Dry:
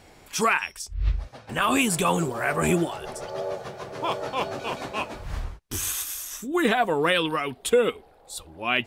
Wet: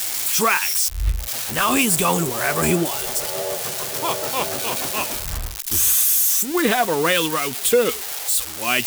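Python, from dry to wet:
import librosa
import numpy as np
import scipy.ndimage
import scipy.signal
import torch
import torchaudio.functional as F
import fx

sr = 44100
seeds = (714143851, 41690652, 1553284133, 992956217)

y = x + 0.5 * 10.0 ** (-17.5 / 20.0) * np.diff(np.sign(x), prepend=np.sign(x[:1]))
y = F.gain(torch.from_numpy(y), 3.0).numpy()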